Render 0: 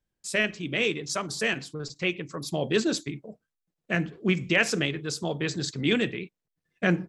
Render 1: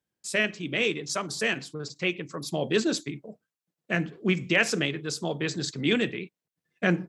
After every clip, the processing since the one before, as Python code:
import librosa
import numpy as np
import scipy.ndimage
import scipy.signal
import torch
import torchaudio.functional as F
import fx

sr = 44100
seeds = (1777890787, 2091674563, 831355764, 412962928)

y = scipy.signal.sosfilt(scipy.signal.butter(2, 120.0, 'highpass', fs=sr, output='sos'), x)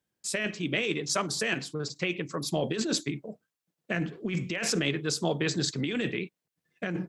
y = fx.over_compress(x, sr, threshold_db=-28.0, ratio=-1.0)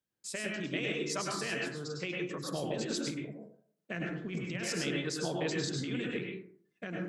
y = fx.rev_plate(x, sr, seeds[0], rt60_s=0.55, hf_ratio=0.4, predelay_ms=90, drr_db=-1.0)
y = F.gain(torch.from_numpy(y), -8.5).numpy()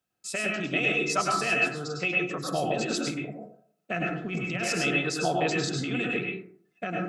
y = fx.small_body(x, sr, hz=(720.0, 1300.0, 2600.0), ring_ms=60, db=15)
y = F.gain(torch.from_numpy(y), 5.0).numpy()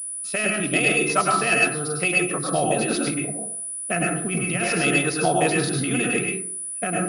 y = fx.pwm(x, sr, carrier_hz=9800.0)
y = F.gain(torch.from_numpy(y), 6.0).numpy()